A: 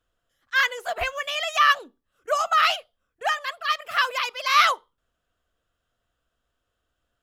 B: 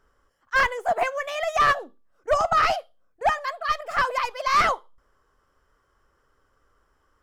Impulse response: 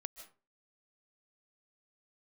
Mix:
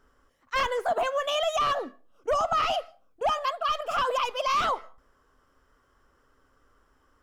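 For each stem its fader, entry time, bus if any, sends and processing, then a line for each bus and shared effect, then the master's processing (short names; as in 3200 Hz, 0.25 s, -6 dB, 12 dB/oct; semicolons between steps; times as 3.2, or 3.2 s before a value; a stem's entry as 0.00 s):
-6.0 dB, 0.00 s, no send, high shelf 5100 Hz -11.5 dB; overdrive pedal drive 10 dB, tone 5700 Hz, clips at -3.5 dBFS
+0.5 dB, 0.00 s, send -18 dB, bell 260 Hz +8 dB 0.29 oct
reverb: on, RT60 0.35 s, pre-delay 0.11 s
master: limiter -18.5 dBFS, peak gain reduction 10 dB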